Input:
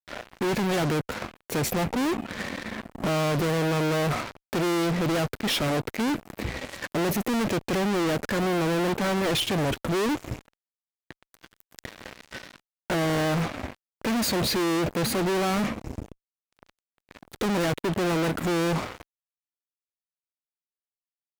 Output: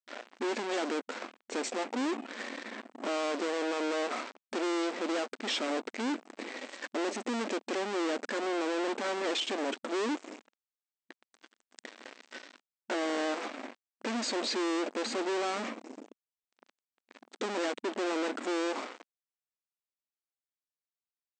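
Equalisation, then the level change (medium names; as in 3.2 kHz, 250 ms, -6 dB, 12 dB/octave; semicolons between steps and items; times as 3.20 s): brick-wall FIR band-pass 220–8500 Hz; -6.0 dB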